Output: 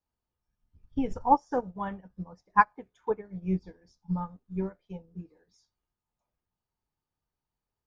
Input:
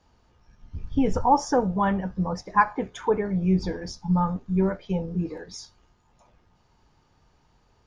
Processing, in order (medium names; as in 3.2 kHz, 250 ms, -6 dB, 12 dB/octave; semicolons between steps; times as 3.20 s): upward expansion 2.5:1, over -32 dBFS